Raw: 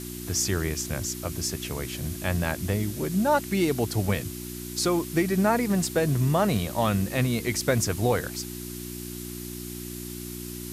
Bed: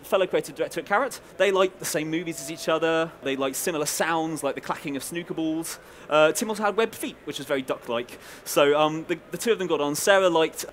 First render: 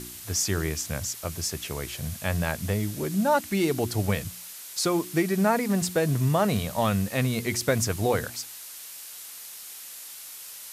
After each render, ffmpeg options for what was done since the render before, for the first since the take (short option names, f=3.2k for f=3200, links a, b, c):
-af "bandreject=f=60:t=h:w=4,bandreject=f=120:t=h:w=4,bandreject=f=180:t=h:w=4,bandreject=f=240:t=h:w=4,bandreject=f=300:t=h:w=4,bandreject=f=360:t=h:w=4"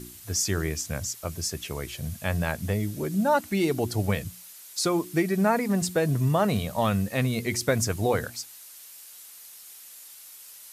-af "afftdn=nr=7:nf=-42"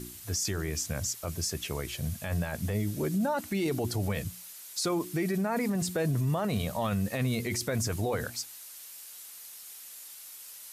-af "alimiter=limit=-22dB:level=0:latency=1:release=13"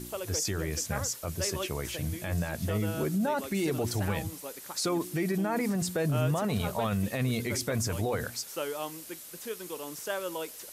-filter_complex "[1:a]volume=-15.5dB[a];[0:a][a]amix=inputs=2:normalize=0"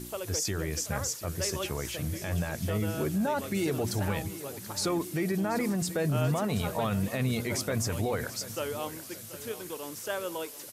-af "aecho=1:1:733|1466|2199|2932:0.178|0.0836|0.0393|0.0185"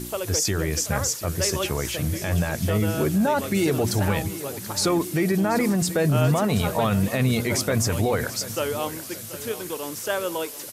-af "volume=7.5dB"